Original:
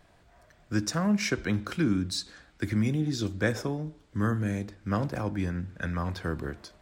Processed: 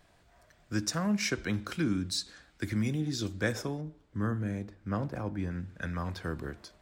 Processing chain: high shelf 2500 Hz +4.5 dB, from 3.81 s -7 dB, from 5.51 s +2 dB; gain -4 dB

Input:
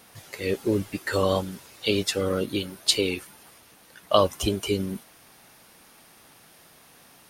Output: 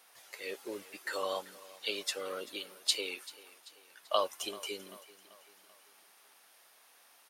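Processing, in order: HPF 620 Hz 12 dB/oct; feedback echo 0.388 s, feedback 50%, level -19.5 dB; gain -8 dB

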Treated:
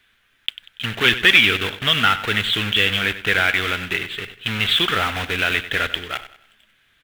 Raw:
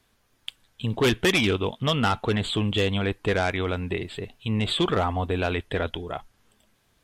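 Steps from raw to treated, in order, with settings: block floating point 3-bit; band shelf 2200 Hz +15 dB; on a send: feedback echo 95 ms, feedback 37%, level -14 dB; on the sum: gain -3 dB

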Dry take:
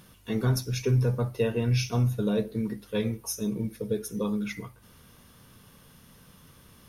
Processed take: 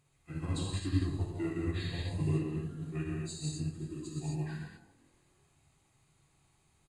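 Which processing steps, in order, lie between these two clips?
delay-line pitch shifter -5.5 st; on a send: frequency-shifting echo 0.167 s, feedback 62%, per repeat +42 Hz, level -18.5 dB; on the sum: non-linear reverb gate 0.29 s flat, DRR -4.5 dB; upward expander 1.5:1, over -40 dBFS; gain -8 dB

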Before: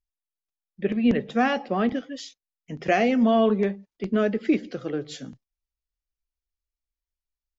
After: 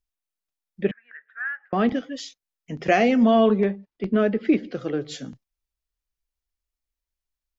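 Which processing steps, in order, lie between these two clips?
0.91–1.73 Butterworth band-pass 1600 Hz, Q 4.8; 3.6–4.75 air absorption 150 m; gain +2.5 dB

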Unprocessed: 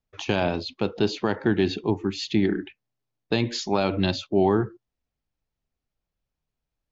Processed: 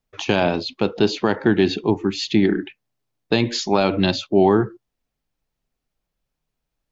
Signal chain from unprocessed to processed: bell 78 Hz -9 dB 0.71 oct; gain +5.5 dB

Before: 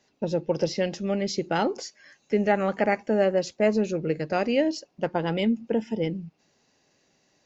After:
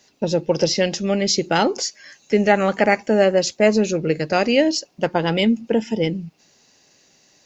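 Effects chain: high shelf 3100 Hz +10 dB; gain +6 dB

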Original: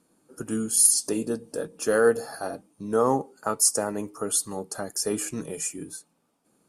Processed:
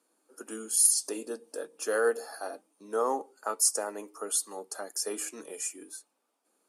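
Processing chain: Bessel high-pass 430 Hz, order 6; gain -4 dB

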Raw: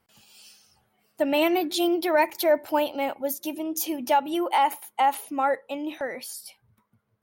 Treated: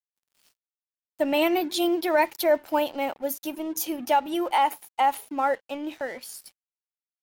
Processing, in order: crossover distortion -46.5 dBFS

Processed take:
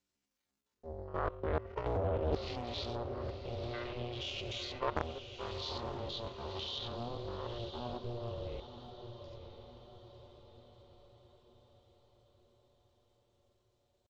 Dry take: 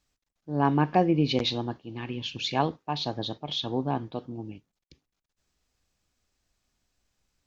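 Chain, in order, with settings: stepped spectrum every 50 ms; HPF 48 Hz 6 dB/oct; comb 6.2 ms, depth 54%; de-hum 95.78 Hz, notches 4; level quantiser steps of 23 dB; limiter -21.5 dBFS, peak gain reduction 10 dB; reverse; compressor 6:1, threshold -35 dBFS, peak gain reduction 9.5 dB; reverse; ring modulator 240 Hz; tempo 0.53×; on a send: diffused feedback echo 0.967 s, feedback 50%, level -9 dB; on the sum: Doppler distortion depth 0.85 ms; gain +8 dB

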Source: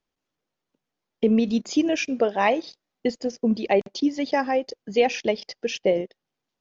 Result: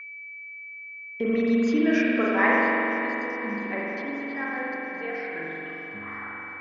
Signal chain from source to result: tape stop at the end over 1.58 s; Doppler pass-by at 1.63, 10 m/s, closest 7.8 m; high shelf 5200 Hz -8 dB; swung echo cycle 0.968 s, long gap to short 1.5:1, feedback 53%, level -17 dB; spring tank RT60 3.2 s, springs 43 ms, chirp 70 ms, DRR -5.5 dB; whine 2300 Hz -37 dBFS; band shelf 1500 Hz +15 dB 1.2 oct; gain -7.5 dB

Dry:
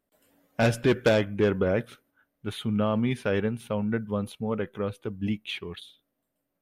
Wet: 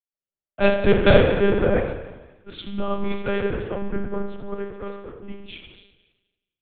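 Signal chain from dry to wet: ending faded out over 1.89 s; split-band echo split 570 Hz, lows 0.15 s, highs 0.249 s, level -14.5 dB; spring tank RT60 2.2 s, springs 44 ms, chirp 80 ms, DRR 0.5 dB; monotone LPC vocoder at 8 kHz 200 Hz; three-band expander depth 100%; gain +1.5 dB

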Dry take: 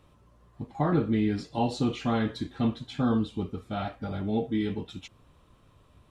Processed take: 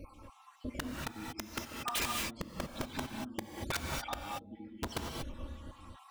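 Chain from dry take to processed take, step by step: random spectral dropouts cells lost 64%; low shelf 480 Hz +5.5 dB; flipped gate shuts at -27 dBFS, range -35 dB; envelope flanger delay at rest 3.7 ms, full sweep at -18.5 dBFS; wrapped overs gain 40.5 dB; non-linear reverb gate 0.26 s rising, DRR 1 dB; gain +13.5 dB

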